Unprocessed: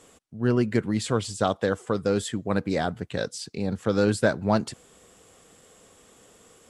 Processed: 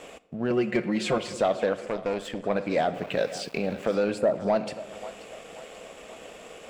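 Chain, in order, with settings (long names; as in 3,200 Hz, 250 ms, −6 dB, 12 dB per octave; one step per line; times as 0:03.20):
downward compressor 2.5 to 1, threshold −39 dBFS, peak gain reduction 15.5 dB
0:00.50–0:01.18: comb filter 5.6 ms, depth 91%
0:04.18–0:04.47: time-frequency box erased 1,400–6,600 Hz
echo with a time of its own for lows and highs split 540 Hz, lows 216 ms, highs 533 ms, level −16 dB
convolution reverb RT60 1.1 s, pre-delay 15 ms, DRR 13 dB
0:01.86–0:02.44: tube saturation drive 33 dB, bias 0.75
0:02.94–0:03.95: centre clipping without the shift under −52 dBFS
graphic EQ with 15 bands 100 Hz −12 dB, 630 Hz +10 dB, 2,500 Hz +11 dB, 10,000 Hz −4 dB
leveller curve on the samples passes 1
high-shelf EQ 4,400 Hz −6.5 dB
level +4.5 dB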